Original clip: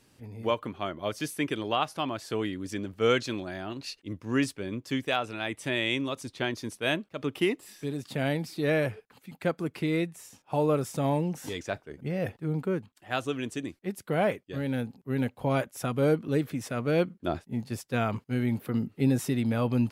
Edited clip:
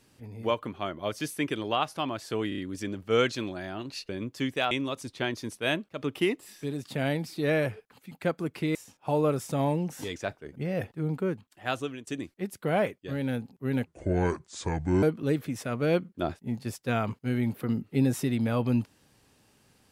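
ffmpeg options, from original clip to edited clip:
-filter_complex "[0:a]asplit=10[a][b][c][d][e][f][g][h][i][j];[a]atrim=end=2.522[k];[b]atrim=start=2.488:end=2.522[l];[c]atrim=start=2.488:end=2.522[m];[d]atrim=start=2.488:end=4.002[n];[e]atrim=start=4.598:end=5.222[o];[f]atrim=start=5.908:end=9.952[p];[g]atrim=start=10.198:end=13.52,asetpts=PTS-STARTPTS,afade=t=out:st=3.022:d=0.3:silence=0.125893[q];[h]atrim=start=13.52:end=15.314,asetpts=PTS-STARTPTS,afade=t=in:d=0.004:c=hsin:silence=0.125893[r];[i]atrim=start=15.31:end=16.08,asetpts=PTS-STARTPTS,asetrate=29106,aresample=44100[s];[j]atrim=start=16.076[t];[k][l]acrossfade=d=0.004:c1=hsin:c2=hsin[u];[u][m]acrossfade=d=0.004:c1=hsin:c2=hsin[v];[v][n]acrossfade=d=0.004:c1=hsin:c2=hsin[w];[w][o]acrossfade=d=0.004:c1=hsin:c2=hsin[x];[x][p]acrossfade=d=0.004:c1=hsin:c2=hsin[y];[q][r]concat=n=2:v=0:a=1[z];[y][z]acrossfade=d=0.004:c1=hsin:c2=hsin[aa];[aa][s]acrossfade=d=0.004:c1=hsin:c2=hsin[ab];[ab][t]acrossfade=d=0.004:c1=hsin:c2=hsin"

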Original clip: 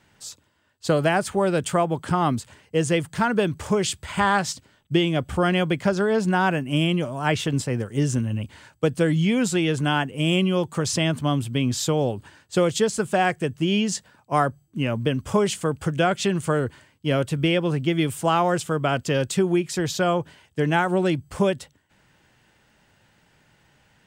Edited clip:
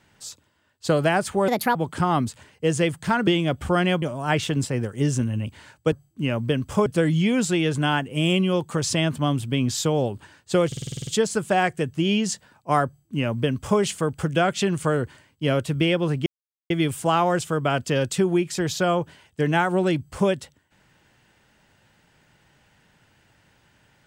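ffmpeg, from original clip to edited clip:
-filter_complex "[0:a]asplit=16[a][b][c][d][e][f][g][h][i][j][k][l][m][n][o][p];[a]atrim=end=1.484[q];[b]atrim=start=1.48:end=1.86,asetpts=PTS-STARTPTS,asetrate=61740,aresample=44100[r];[c]atrim=start=1.856:end=3.382[s];[d]atrim=start=4.948:end=5.702[t];[e]atrim=start=6.988:end=8.892[u];[f]atrim=start=14.488:end=15.432[v];[g]atrim=start=8.888:end=12.752[w];[h]atrim=start=12.698:end=12.752[x];[i]atrim=start=12.698:end=12.752[y];[j]atrim=start=12.698:end=12.752[z];[k]atrim=start=12.698:end=12.752[aa];[l]atrim=start=12.698:end=12.752[ab];[m]atrim=start=12.698:end=12.752[ac];[n]atrim=start=12.698:end=12.752[ad];[o]atrim=start=12.698:end=17.89,asetpts=PTS-STARTPTS,afade=t=out:st=5.188:d=0.004:c=hsin,apad=pad_dur=0.44[ae];[p]atrim=start=17.89,asetpts=PTS-STARTPTS,afade=t=in:d=0.004:c=hsin[af];[q][r]acrossfade=d=0.004:c1=hsin:c2=hsin[ag];[ag][s]acrossfade=d=0.004:c1=hsin:c2=hsin[ah];[ah][t]acrossfade=d=0.004:c1=hsin:c2=hsin[ai];[ai][u]acrossfade=d=0.004:c1=hsin:c2=hsin[aj];[aj][v]acrossfade=d=0.004:c1=hsin:c2=hsin[ak];[ak][w]acrossfade=d=0.004:c1=hsin:c2=hsin[al];[al][x]acrossfade=d=0.004:c1=hsin:c2=hsin[am];[am][y]acrossfade=d=0.004:c1=hsin:c2=hsin[an];[an][z]acrossfade=d=0.004:c1=hsin:c2=hsin[ao];[ao][aa]acrossfade=d=0.004:c1=hsin:c2=hsin[ap];[ap][ab]acrossfade=d=0.004:c1=hsin:c2=hsin[aq];[aq][ac]acrossfade=d=0.004:c1=hsin:c2=hsin[ar];[ar][ad]acrossfade=d=0.004:c1=hsin:c2=hsin[as];[ae][af]concat=n=2:v=0:a=1[at];[as][at]acrossfade=d=0.004:c1=hsin:c2=hsin"

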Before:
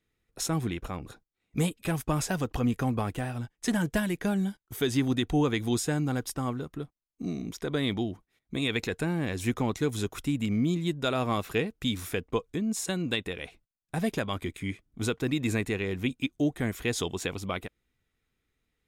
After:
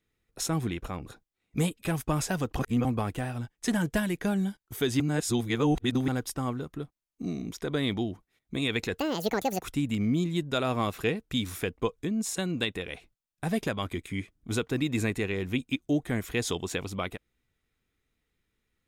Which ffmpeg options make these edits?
-filter_complex "[0:a]asplit=7[a][b][c][d][e][f][g];[a]atrim=end=2.592[h];[b]atrim=start=2.588:end=2.852,asetpts=PTS-STARTPTS,areverse[i];[c]atrim=start=2.848:end=5.002[j];[d]atrim=start=4.998:end=6.082,asetpts=PTS-STARTPTS,areverse[k];[e]atrim=start=6.078:end=8.994[l];[f]atrim=start=8.99:end=10.13,asetpts=PTS-STARTPTS,asetrate=79380,aresample=44100[m];[g]atrim=start=10.126[n];[h][i]acrossfade=d=0.004:c1=hsin:c2=hsin[o];[o][j]acrossfade=d=0.004:c1=hsin:c2=hsin[p];[p][k]acrossfade=d=0.004:c1=hsin:c2=hsin[q];[q][l]acrossfade=d=0.004:c1=hsin:c2=hsin[r];[r][m]acrossfade=d=0.004:c1=hsin:c2=hsin[s];[s][n]acrossfade=d=0.004:c1=hsin:c2=hsin"

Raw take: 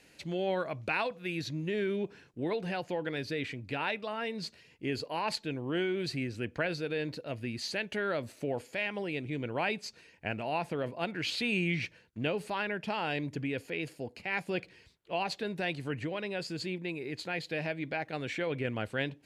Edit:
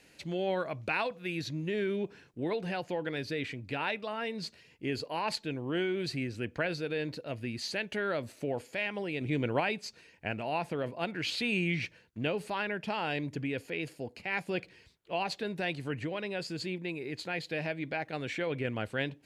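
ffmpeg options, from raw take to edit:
-filter_complex "[0:a]asplit=3[a][b][c];[a]atrim=end=9.212[d];[b]atrim=start=9.208:end=9.602,asetpts=PTS-STARTPTS,volume=5dB[e];[c]atrim=start=9.598[f];[d][e]acrossfade=d=0.004:c1=hsin:c2=hsin[g];[g][f]acrossfade=d=0.004:c1=hsin:c2=hsin"

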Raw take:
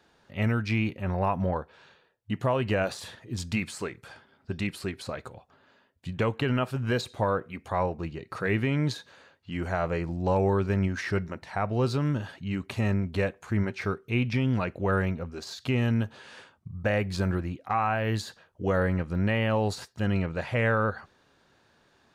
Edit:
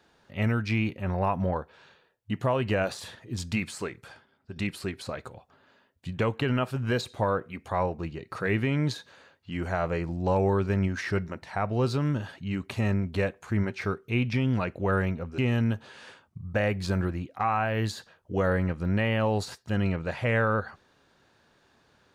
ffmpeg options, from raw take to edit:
-filter_complex "[0:a]asplit=3[a][b][c];[a]atrim=end=4.56,asetpts=PTS-STARTPTS,afade=t=out:st=4.05:d=0.51:c=qua:silence=0.398107[d];[b]atrim=start=4.56:end=15.382,asetpts=PTS-STARTPTS,afade=t=in:d=0.004:c=hsin:silence=0.398107[e];[c]atrim=start=15.678[f];[d][e]concat=n=2:v=0:a=1[g];[g][f]acrossfade=d=0.004:c1=hsin:c2=hsin"

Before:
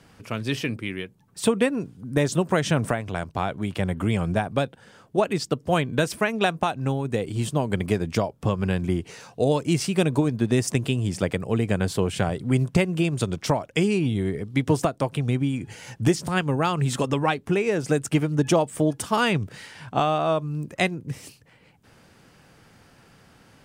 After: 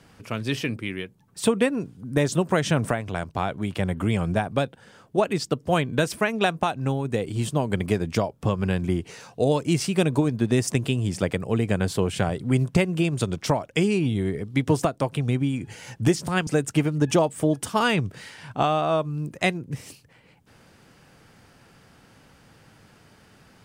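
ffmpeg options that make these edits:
-filter_complex "[0:a]asplit=2[a][b];[a]atrim=end=16.472[c];[b]atrim=start=17.838[d];[c][d]acrossfade=d=0.004:c1=hsin:c2=hsin"

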